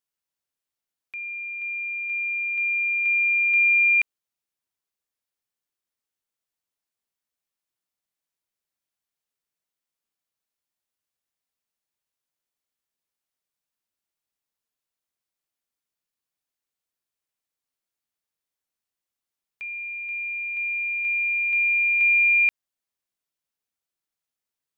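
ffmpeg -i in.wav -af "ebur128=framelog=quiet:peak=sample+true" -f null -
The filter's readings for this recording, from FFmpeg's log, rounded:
Integrated loudness:
  I:         -20.2 LUFS
  Threshold: -30.6 LUFS
Loudness range:
  LRA:        13.6 LU
  Threshold: -42.4 LUFS
  LRA low:   -33.9 LUFS
  LRA high:  -20.3 LUFS
Sample peak:
  Peak:      -15.1 dBFS
True peak:
  Peak:      -15.1 dBFS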